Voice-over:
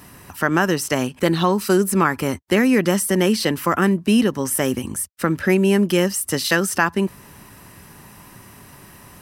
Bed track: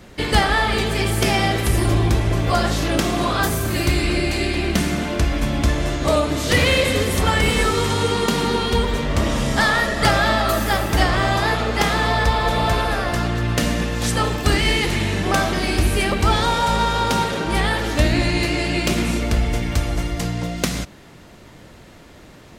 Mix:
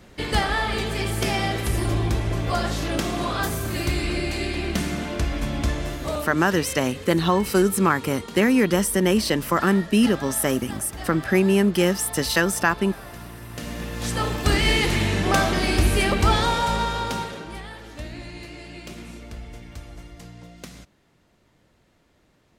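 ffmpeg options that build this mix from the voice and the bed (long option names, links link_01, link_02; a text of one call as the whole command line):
ffmpeg -i stem1.wav -i stem2.wav -filter_complex "[0:a]adelay=5850,volume=-2dB[link_01];[1:a]volume=12dB,afade=type=out:start_time=5.68:duration=0.84:silence=0.223872,afade=type=in:start_time=13.49:duration=1.26:silence=0.133352,afade=type=out:start_time=16.21:duration=1.41:silence=0.133352[link_02];[link_01][link_02]amix=inputs=2:normalize=0" out.wav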